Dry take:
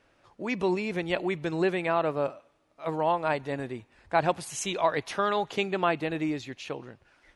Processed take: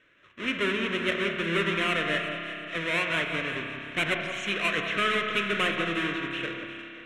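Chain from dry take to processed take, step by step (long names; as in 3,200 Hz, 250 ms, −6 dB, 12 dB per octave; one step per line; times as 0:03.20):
each half-wave held at its own peak
low-pass filter 4,000 Hz 24 dB per octave
spectral tilt +3.5 dB per octave
soft clipping −11.5 dBFS, distortion −17 dB
phaser with its sweep stopped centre 1,900 Hz, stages 4
delay that swaps between a low-pass and a high-pass 185 ms, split 1,300 Hz, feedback 55%, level −7 dB
spring reverb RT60 3.2 s, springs 31 ms, chirp 65 ms, DRR 3.5 dB
wrong playback speed 24 fps film run at 25 fps
level +1.5 dB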